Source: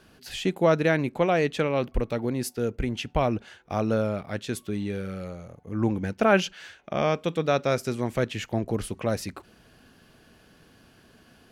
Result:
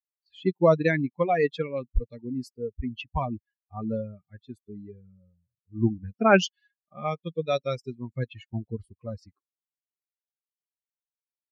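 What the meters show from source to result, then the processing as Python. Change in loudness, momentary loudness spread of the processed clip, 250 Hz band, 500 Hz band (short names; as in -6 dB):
-0.5 dB, 22 LU, -2.5 dB, -1.5 dB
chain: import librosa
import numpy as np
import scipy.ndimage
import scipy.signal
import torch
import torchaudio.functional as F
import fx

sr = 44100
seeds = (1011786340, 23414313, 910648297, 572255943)

y = fx.bin_expand(x, sr, power=3.0)
y = fx.env_lowpass(y, sr, base_hz=1100.0, full_db=-24.0)
y = y * librosa.db_to_amplitude(5.5)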